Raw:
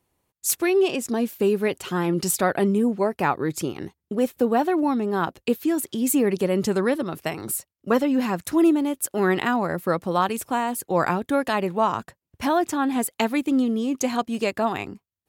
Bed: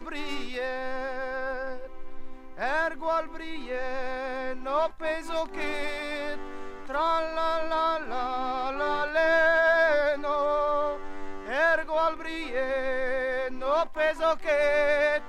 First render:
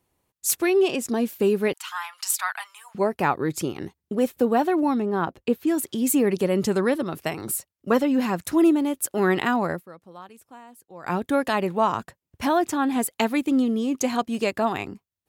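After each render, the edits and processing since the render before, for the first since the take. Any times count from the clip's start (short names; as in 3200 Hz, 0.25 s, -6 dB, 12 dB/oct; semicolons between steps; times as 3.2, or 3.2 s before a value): 1.73–2.95 steep high-pass 890 Hz 48 dB/oct; 5.02–5.67 high shelf 2900 Hz -10 dB; 9.71–11.15 dip -21 dB, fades 0.12 s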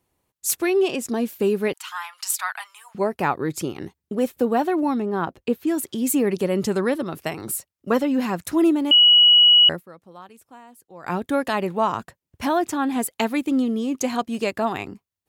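8.91–9.69 bleep 2920 Hz -9.5 dBFS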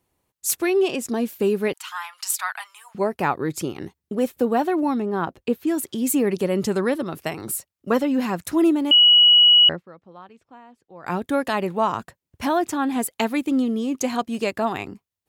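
9.69–11.06 air absorption 170 m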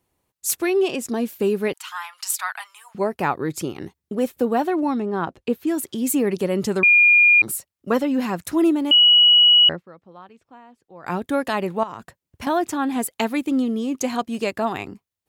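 4.7–5.5 LPF 9900 Hz; 6.83–7.42 bleep 2420 Hz -10 dBFS; 11.83–12.47 compressor 8:1, threshold -29 dBFS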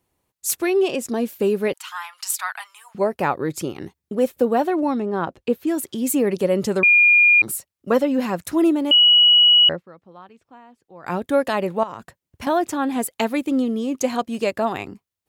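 dynamic EQ 550 Hz, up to +6 dB, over -37 dBFS, Q 3.5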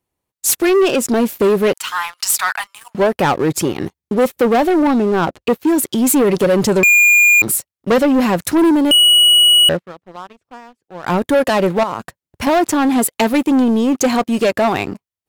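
sample leveller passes 3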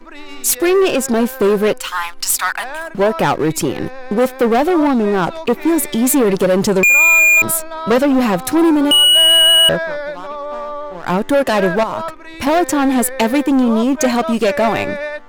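add bed 0 dB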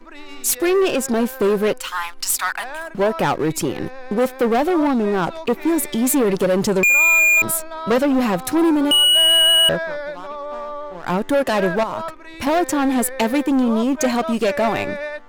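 gain -4 dB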